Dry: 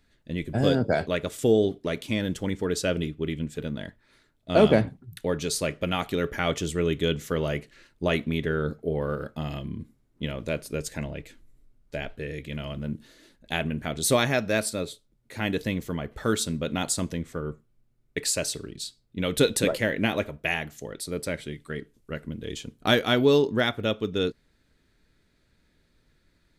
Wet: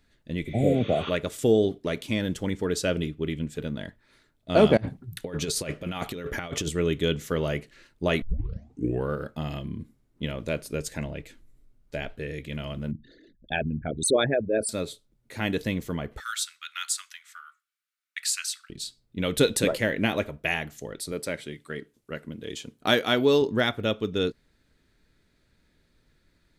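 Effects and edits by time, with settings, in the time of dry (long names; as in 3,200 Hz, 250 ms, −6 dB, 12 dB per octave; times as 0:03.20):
0:00.48–0:01.07: healed spectral selection 810–6,700 Hz
0:04.77–0:06.69: compressor whose output falls as the input rises −30 dBFS, ratio −0.5
0:08.22: tape start 0.87 s
0:12.91–0:14.69: spectral envelope exaggerated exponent 3
0:16.20–0:18.70: elliptic high-pass filter 1,300 Hz, stop band 60 dB
0:21.12–0:23.42: high-pass filter 200 Hz 6 dB per octave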